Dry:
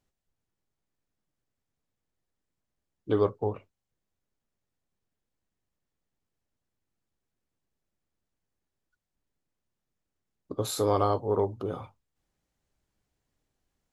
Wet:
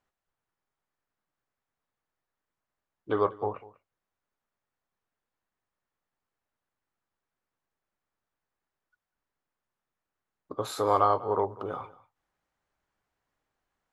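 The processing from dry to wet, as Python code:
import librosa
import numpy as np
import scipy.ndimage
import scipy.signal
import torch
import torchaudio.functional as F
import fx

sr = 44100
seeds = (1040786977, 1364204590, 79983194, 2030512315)

y = fx.peak_eq(x, sr, hz=1200.0, db=15.0, octaves=2.6)
y = y + 10.0 ** (-20.0 / 20.0) * np.pad(y, (int(195 * sr / 1000.0), 0))[:len(y)]
y = y * 10.0 ** (-8.5 / 20.0)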